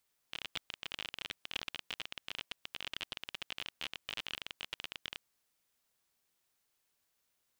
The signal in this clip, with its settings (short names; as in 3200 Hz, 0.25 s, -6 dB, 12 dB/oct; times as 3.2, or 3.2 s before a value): random clicks 32/s -22.5 dBFS 4.84 s